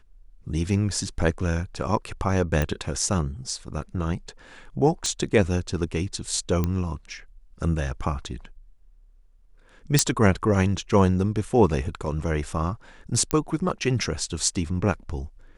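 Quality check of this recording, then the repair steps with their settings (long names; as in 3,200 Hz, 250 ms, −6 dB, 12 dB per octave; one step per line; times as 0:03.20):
0:02.62: click
0:05.06: click −14 dBFS
0:06.64: click −12 dBFS
0:09.99: click −3 dBFS
0:13.31: click −7 dBFS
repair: click removal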